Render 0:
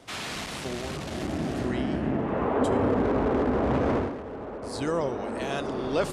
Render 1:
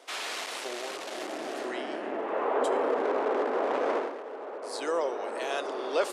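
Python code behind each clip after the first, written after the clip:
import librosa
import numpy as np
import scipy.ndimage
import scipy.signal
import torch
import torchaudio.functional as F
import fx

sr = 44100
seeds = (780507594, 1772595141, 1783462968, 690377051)

y = scipy.signal.sosfilt(scipy.signal.butter(4, 390.0, 'highpass', fs=sr, output='sos'), x)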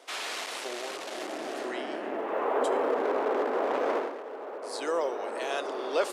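y = fx.quant_float(x, sr, bits=6)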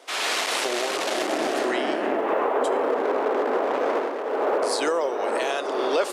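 y = fx.recorder_agc(x, sr, target_db=-18.5, rise_db_per_s=27.0, max_gain_db=30)
y = y * 10.0 ** (3.5 / 20.0)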